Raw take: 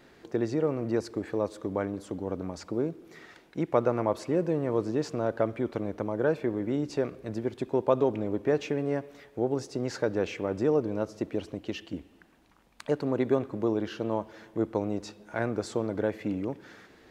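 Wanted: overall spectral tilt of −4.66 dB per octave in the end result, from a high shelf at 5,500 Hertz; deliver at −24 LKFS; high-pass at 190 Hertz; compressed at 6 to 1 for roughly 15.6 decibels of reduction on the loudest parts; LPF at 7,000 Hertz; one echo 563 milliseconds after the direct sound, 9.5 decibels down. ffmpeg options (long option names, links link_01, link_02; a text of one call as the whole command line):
ffmpeg -i in.wav -af "highpass=190,lowpass=7000,highshelf=frequency=5500:gain=7,acompressor=threshold=-37dB:ratio=6,aecho=1:1:563:0.335,volume=18dB" out.wav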